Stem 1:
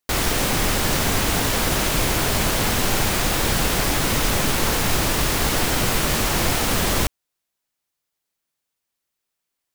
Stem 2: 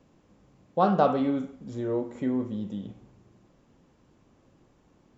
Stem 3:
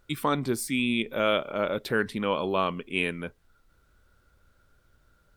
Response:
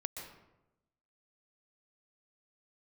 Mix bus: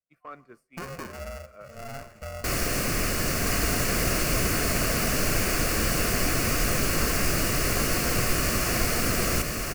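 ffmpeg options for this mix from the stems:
-filter_complex "[0:a]adelay=2350,volume=0.531,asplit=2[s0][s1];[s1]volume=0.668[s2];[1:a]highpass=120,acompressor=threshold=0.0501:ratio=6,aeval=exprs='val(0)*sgn(sin(2*PI*340*n/s))':c=same,volume=0.398,asplit=4[s3][s4][s5][s6];[s4]volume=0.168[s7];[s5]volume=0.168[s8];[2:a]acrossover=split=560 2200:gain=0.2 1 0.126[s9][s10][s11];[s9][s10][s11]amix=inputs=3:normalize=0,asoftclip=type=tanh:threshold=0.126,volume=0.251,asplit=2[s12][s13];[s13]volume=0.211[s14];[s6]apad=whole_len=236732[s15];[s12][s15]sidechaincompress=threshold=0.00158:ratio=8:attack=16:release=123[s16];[3:a]atrim=start_sample=2205[s17];[s7][s14]amix=inputs=2:normalize=0[s18];[s18][s17]afir=irnorm=-1:irlink=0[s19];[s2][s8]amix=inputs=2:normalize=0,aecho=0:1:1017:1[s20];[s0][s3][s16][s19][s20]amix=inputs=5:normalize=0,agate=range=0.0224:threshold=0.00631:ratio=3:detection=peak,superequalizer=9b=0.316:13b=0.316"

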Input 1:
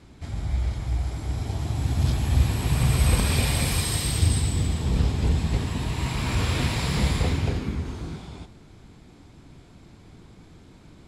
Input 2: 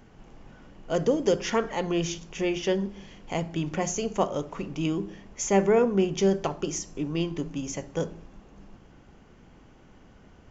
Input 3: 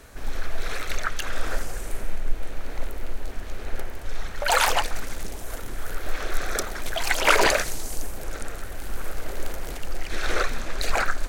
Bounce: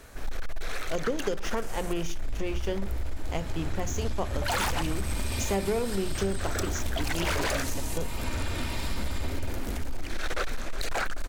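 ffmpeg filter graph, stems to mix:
-filter_complex "[0:a]aecho=1:1:3.3:0.73,asoftclip=type=hard:threshold=0.158,adelay=2000,volume=0.398[s0];[1:a]aeval=exprs='sgn(val(0))*max(abs(val(0))-0.0119,0)':c=same,volume=1[s1];[2:a]volume=9.44,asoftclip=hard,volume=0.106,volume=0.841[s2];[s0][s1][s2]amix=inputs=3:normalize=0,acompressor=threshold=0.0631:ratio=6"

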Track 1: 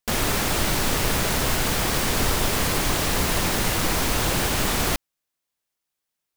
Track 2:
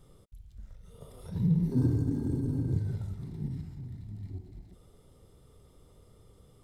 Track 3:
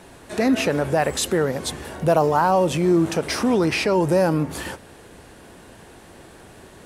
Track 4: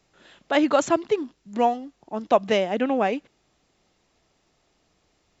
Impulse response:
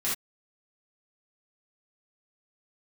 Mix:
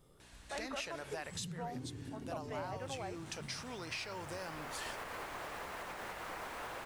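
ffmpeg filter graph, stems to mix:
-filter_complex "[0:a]adelay=2450,volume=0.237[s0];[1:a]lowpass=f=2700:p=1,volume=0.708[s1];[2:a]lowpass=5400,equalizer=f=290:w=0.3:g=-13.5,aeval=exprs='val(0)+0.00398*(sin(2*PI*60*n/s)+sin(2*PI*2*60*n/s)/2+sin(2*PI*3*60*n/s)/3+sin(2*PI*4*60*n/s)/4+sin(2*PI*5*60*n/s)/5)':c=same,adelay=200,volume=0.355[s2];[3:a]volume=0.15,asplit=2[s3][s4];[s4]apad=whole_len=388709[s5];[s0][s5]sidechaincompress=threshold=0.002:ratio=10:attack=16:release=1350[s6];[s6][s3]amix=inputs=2:normalize=0,acrossover=split=460 2200:gain=0.224 1 0.141[s7][s8][s9];[s7][s8][s9]amix=inputs=3:normalize=0,alimiter=level_in=3.16:limit=0.0631:level=0:latency=1:release=114,volume=0.316,volume=1[s10];[s1][s2]amix=inputs=2:normalize=0,aemphasis=mode=production:type=50kf,acompressor=threshold=0.01:ratio=4,volume=1[s11];[s10][s11]amix=inputs=2:normalize=0,lowshelf=f=180:g=-8.5"

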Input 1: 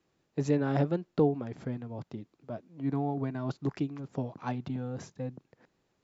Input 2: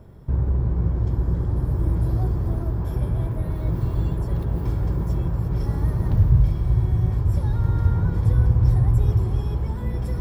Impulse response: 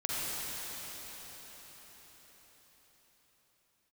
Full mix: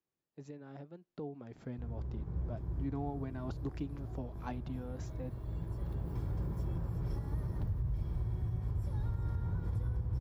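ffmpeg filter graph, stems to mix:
-filter_complex "[0:a]alimiter=limit=0.119:level=0:latency=1:release=309,volume=0.447,afade=t=in:st=0.98:d=0.78:silence=0.251189,asplit=2[s0][s1];[1:a]adelay=1500,volume=0.251,asplit=2[s2][s3];[s3]volume=0.282[s4];[s1]apad=whole_len=516036[s5];[s2][s5]sidechaincompress=threshold=0.00501:ratio=8:attack=5.3:release=1300[s6];[s4]aecho=0:1:379:1[s7];[s0][s6][s7]amix=inputs=3:normalize=0,alimiter=level_in=1.5:limit=0.0631:level=0:latency=1:release=188,volume=0.668"

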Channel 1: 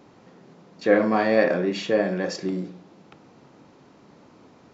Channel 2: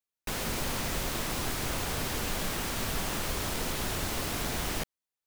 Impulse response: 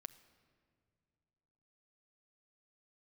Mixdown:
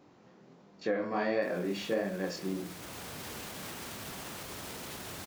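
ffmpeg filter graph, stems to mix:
-filter_complex "[0:a]flanger=delay=20:depth=5.7:speed=1.4,volume=0.596,asplit=2[s0][s1];[1:a]highpass=100,alimiter=level_in=2.24:limit=0.0631:level=0:latency=1,volume=0.447,adelay=1150,volume=0.75[s2];[s1]apad=whole_len=282768[s3];[s2][s3]sidechaincompress=threshold=0.0141:ratio=3:attack=16:release=826[s4];[s0][s4]amix=inputs=2:normalize=0,alimiter=limit=0.0944:level=0:latency=1:release=419"

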